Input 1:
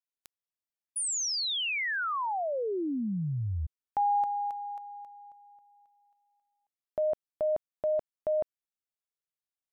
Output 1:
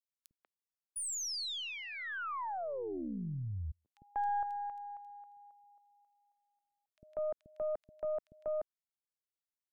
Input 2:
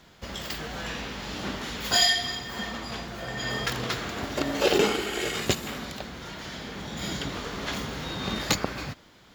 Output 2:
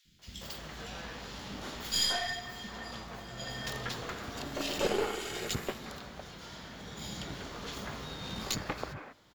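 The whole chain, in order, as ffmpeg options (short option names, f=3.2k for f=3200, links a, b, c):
-filter_complex "[0:a]acrossover=split=280|2300[a][b][c];[a]adelay=50[d];[b]adelay=190[e];[d][e][c]amix=inputs=3:normalize=0,aeval=exprs='0.335*(cos(1*acos(clip(val(0)/0.335,-1,1)))-cos(1*PI/2))+0.0211*(cos(6*acos(clip(val(0)/0.335,-1,1)))-cos(6*PI/2))':c=same,volume=-7dB"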